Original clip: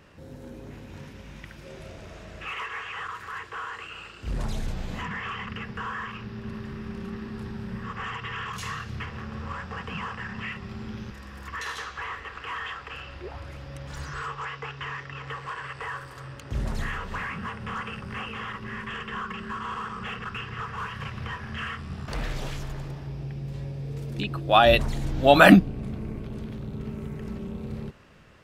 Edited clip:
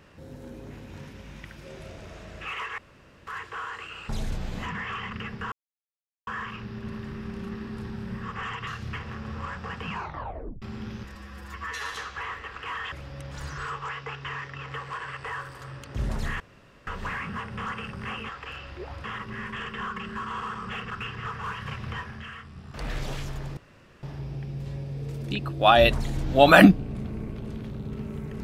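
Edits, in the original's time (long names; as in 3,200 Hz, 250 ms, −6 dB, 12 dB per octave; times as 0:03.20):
0:02.78–0:03.27: fill with room tone
0:04.09–0:04.45: remove
0:05.88: splice in silence 0.75 s
0:08.28–0:08.74: remove
0:09.99: tape stop 0.70 s
0:11.22–0:11.74: time-stretch 1.5×
0:12.73–0:13.48: move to 0:18.38
0:16.96: splice in room tone 0.47 s
0:21.32–0:22.31: duck −8 dB, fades 0.30 s
0:22.91: splice in room tone 0.46 s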